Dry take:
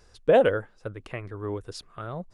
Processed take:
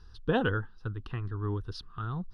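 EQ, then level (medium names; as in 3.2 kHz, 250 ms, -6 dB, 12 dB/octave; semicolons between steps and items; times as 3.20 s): low-pass 7.3 kHz 12 dB/octave; bass shelf 130 Hz +9 dB; static phaser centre 2.2 kHz, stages 6; 0.0 dB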